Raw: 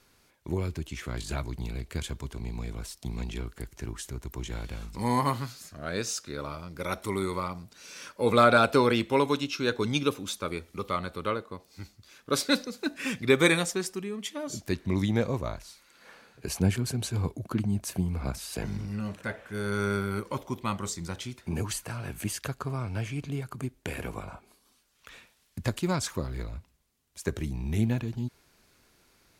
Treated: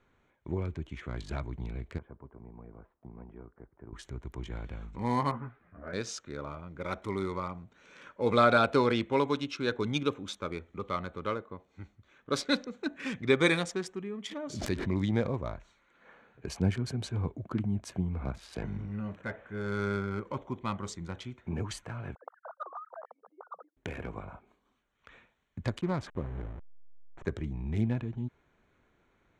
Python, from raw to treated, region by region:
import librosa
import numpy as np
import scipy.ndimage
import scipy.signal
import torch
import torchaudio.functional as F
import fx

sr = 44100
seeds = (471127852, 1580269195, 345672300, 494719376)

y = fx.chain(x, sr, fx.block_float(bits=7),
    fx.bessel_lowpass(hz=780.0, order=4),
    fx.tilt_eq(slope=3.5), at=(1.98, 3.93))
y = fx.chain(y, sr, fx.lowpass(hz=2100.0, slope=24),
    fx.doubler(ms=17.0, db=-6.0),
    fx.ensemble(), at=(5.31, 5.93))
y = fx.chain(y, sr, fx.high_shelf(hz=9800.0, db=3.0),
    fx.pre_swell(db_per_s=54.0), at=(14.26, 15.32))
y = fx.chain(y, sr, fx.sine_speech(),
    fx.ellip_bandpass(low_hz=490.0, high_hz=1300.0, order=3, stop_db=40),
    fx.quant_float(bits=6), at=(22.15, 23.77))
y = fx.chain(y, sr, fx.delta_hold(step_db=-35.5),
    fx.high_shelf(hz=2800.0, db=-9.0), at=(25.81, 27.25))
y = fx.wiener(y, sr, points=9)
y = scipy.signal.sosfilt(scipy.signal.butter(2, 6100.0, 'lowpass', fs=sr, output='sos'), y)
y = fx.notch(y, sr, hz=2700.0, q=16.0)
y = y * librosa.db_to_amplitude(-3.0)